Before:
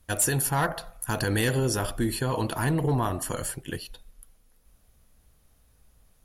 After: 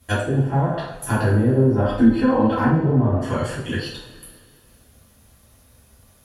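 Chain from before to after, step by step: HPF 56 Hz 12 dB/oct; treble ducked by the level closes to 520 Hz, closed at -21 dBFS; 1.8–2.66 comb 3.9 ms, depth 94%; in parallel at -2 dB: compressor, threshold -35 dBFS, peak gain reduction 15 dB; on the sum: two-slope reverb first 0.5 s, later 2.4 s, from -18 dB, DRR -8 dB; gain -2 dB

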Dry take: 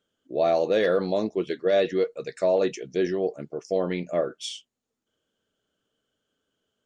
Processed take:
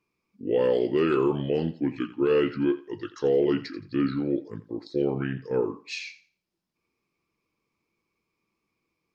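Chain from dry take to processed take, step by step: thinning echo 64 ms, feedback 25%, high-pass 420 Hz, level -15 dB; varispeed -25%; gain -1 dB

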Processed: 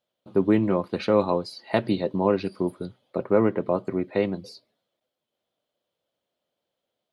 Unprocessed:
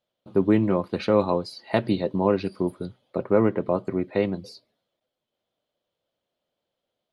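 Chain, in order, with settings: low shelf 67 Hz -9.5 dB

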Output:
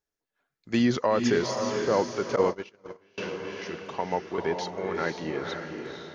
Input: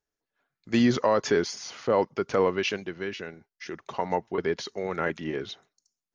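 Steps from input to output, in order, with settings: on a send: diffused feedback echo 0.491 s, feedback 42%, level -4.5 dB; 2.36–3.18 on the sum: gate -22 dBFS, range -31 dB; gain -1.5 dB

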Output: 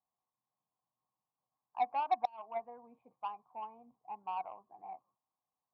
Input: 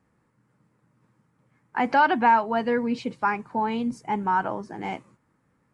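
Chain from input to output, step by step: vocal tract filter a; added harmonics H 7 -23 dB, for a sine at -16 dBFS; flipped gate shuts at -18 dBFS, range -28 dB; gain -3 dB

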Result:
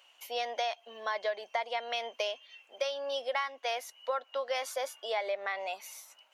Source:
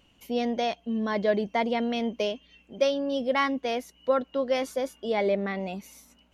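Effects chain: HPF 650 Hz 24 dB/oct; compressor 6:1, threshold -33 dBFS, peak gain reduction 12.5 dB; gain +3.5 dB

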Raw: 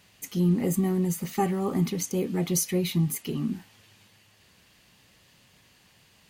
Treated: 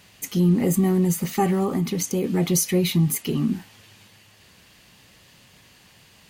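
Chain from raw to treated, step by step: in parallel at +1 dB: limiter -20.5 dBFS, peak gain reduction 7 dB; 1.63–2.24 on the sum: compressor, threshold -20 dBFS, peak gain reduction 5 dB

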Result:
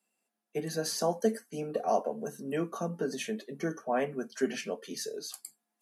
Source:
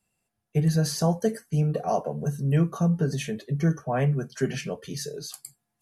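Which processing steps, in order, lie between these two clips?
Chebyshev high-pass 220 Hz, order 4; gain -2 dB

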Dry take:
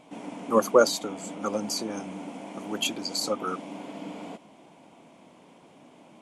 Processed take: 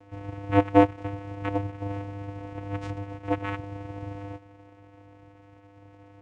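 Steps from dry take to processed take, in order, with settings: CVSD 16 kbps; fifteen-band EQ 160 Hz -10 dB, 630 Hz +6 dB, 1600 Hz +7 dB; vocoder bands 4, square 100 Hz

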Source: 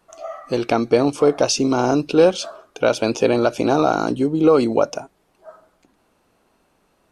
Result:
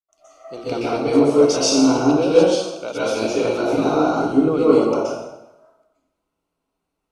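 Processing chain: notches 60/120/180/240 Hz; plate-style reverb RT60 1.2 s, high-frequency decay 0.8×, pre-delay 0.11 s, DRR -9 dB; gate with hold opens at -46 dBFS; notch 1700 Hz, Q 5.7; three-band expander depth 40%; gain -9.5 dB

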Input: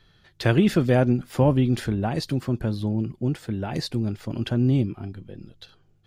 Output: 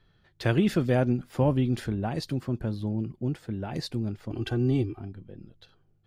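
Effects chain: 4.31–5 comb 2.6 ms, depth 91%; mismatched tape noise reduction decoder only; gain -4.5 dB

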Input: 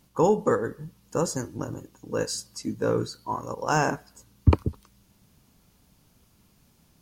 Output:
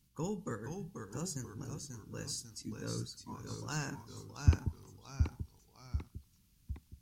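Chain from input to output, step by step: passive tone stack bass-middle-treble 6-0-2; echoes that change speed 0.458 s, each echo -1 st, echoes 3, each echo -6 dB; gain +6 dB

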